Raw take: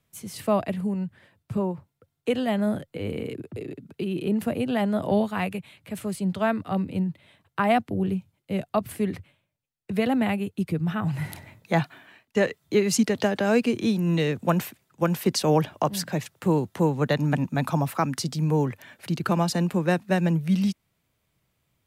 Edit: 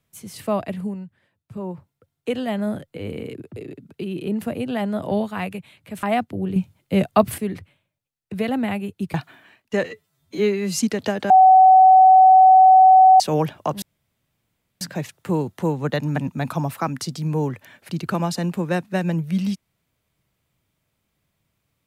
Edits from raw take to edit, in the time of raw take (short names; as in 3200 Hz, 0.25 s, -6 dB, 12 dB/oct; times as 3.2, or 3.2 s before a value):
0.87–1.74 dip -9.5 dB, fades 0.31 s quadratic
6.03–7.61 cut
8.14–8.96 gain +9 dB
10.72–11.77 cut
12.47–12.94 stretch 2×
13.46–15.36 bleep 754 Hz -7 dBFS
15.98 insert room tone 0.99 s